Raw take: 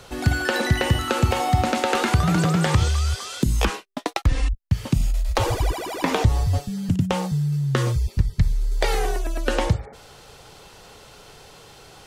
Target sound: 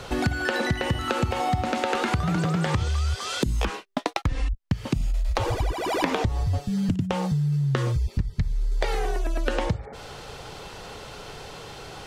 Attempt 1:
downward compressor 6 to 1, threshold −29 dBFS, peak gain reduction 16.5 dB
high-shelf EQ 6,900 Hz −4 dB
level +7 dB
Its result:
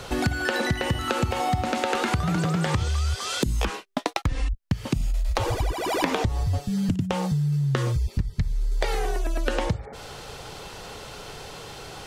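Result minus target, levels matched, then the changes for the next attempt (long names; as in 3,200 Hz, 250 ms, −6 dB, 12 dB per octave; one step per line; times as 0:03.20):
8,000 Hz band +3.0 dB
change: high-shelf EQ 6,900 Hz −10 dB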